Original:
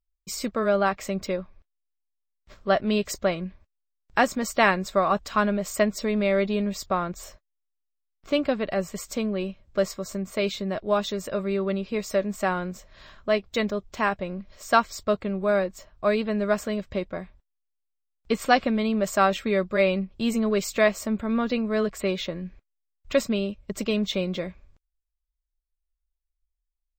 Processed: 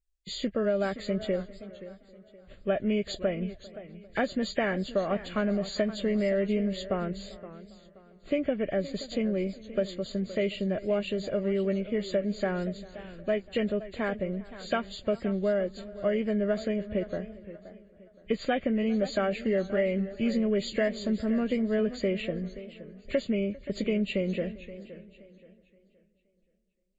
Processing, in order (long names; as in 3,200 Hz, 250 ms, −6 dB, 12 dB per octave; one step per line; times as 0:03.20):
hearing-aid frequency compression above 1,600 Hz 1.5 to 1
drawn EQ curve 600 Hz 0 dB, 1,000 Hz −16 dB, 1,700 Hz −3 dB
downward compressor, threshold −23 dBFS, peak gain reduction 7.5 dB
on a send: feedback echo with a low-pass in the loop 398 ms, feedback 45%, low-pass 2,800 Hz, level −21.5 dB
on the sum: feedback echo with a swinging delay time 523 ms, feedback 31%, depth 119 cents, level −15 dB